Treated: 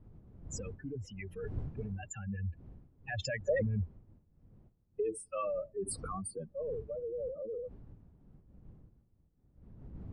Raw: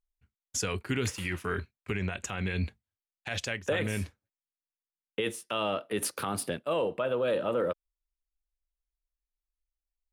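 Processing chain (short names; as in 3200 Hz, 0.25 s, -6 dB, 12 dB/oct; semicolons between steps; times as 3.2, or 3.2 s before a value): spectral contrast raised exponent 3.9; Doppler pass-by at 4.07, 21 m/s, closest 20 m; wind noise 130 Hz -51 dBFS; gain +1 dB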